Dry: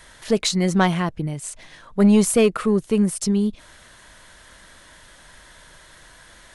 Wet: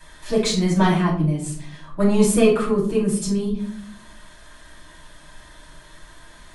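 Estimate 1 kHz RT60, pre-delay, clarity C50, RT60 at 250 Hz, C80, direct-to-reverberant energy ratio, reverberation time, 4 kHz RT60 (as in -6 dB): 0.50 s, 3 ms, 6.0 dB, 1.1 s, 10.5 dB, -6.5 dB, 0.60 s, 0.35 s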